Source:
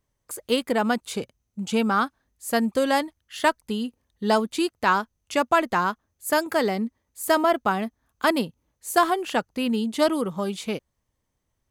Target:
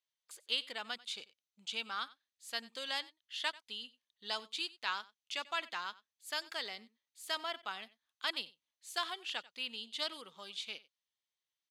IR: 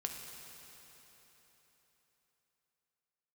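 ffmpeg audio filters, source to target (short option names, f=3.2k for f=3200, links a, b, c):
-filter_complex "[0:a]bandpass=f=3.6k:t=q:w=2.2:csg=0,asplit=2[a][b];[b]aecho=0:1:92:0.0944[c];[a][c]amix=inputs=2:normalize=0,volume=-2dB"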